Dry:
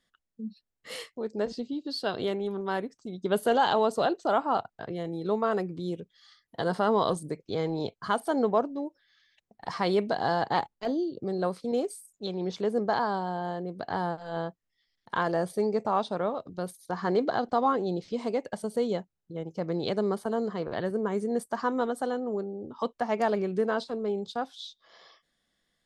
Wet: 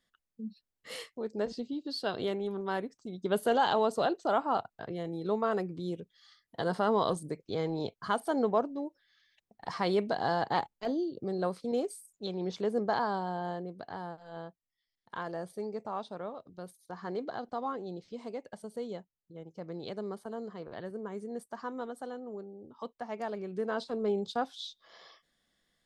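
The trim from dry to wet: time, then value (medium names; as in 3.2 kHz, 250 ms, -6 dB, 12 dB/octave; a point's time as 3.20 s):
13.54 s -3 dB
13.96 s -10.5 dB
23.39 s -10.5 dB
24.05 s 0 dB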